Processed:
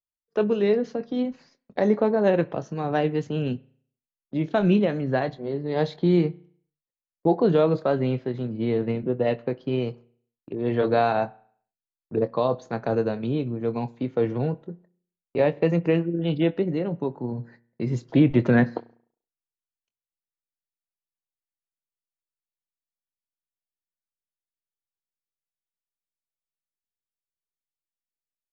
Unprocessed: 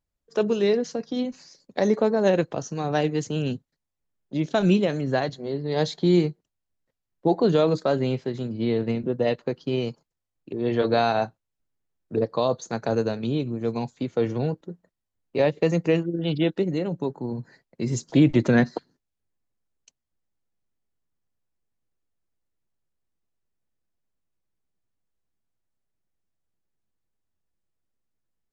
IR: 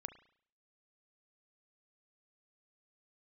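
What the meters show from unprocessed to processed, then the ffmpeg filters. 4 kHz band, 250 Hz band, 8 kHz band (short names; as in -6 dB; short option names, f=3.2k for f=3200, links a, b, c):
-5.5 dB, 0.0 dB, n/a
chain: -filter_complex "[0:a]agate=range=-24dB:threshold=-49dB:ratio=16:detection=peak,lowpass=2.7k,asplit=2[a][b];[1:a]atrim=start_sample=2205,adelay=24[c];[b][c]afir=irnorm=-1:irlink=0,volume=-9dB[d];[a][d]amix=inputs=2:normalize=0"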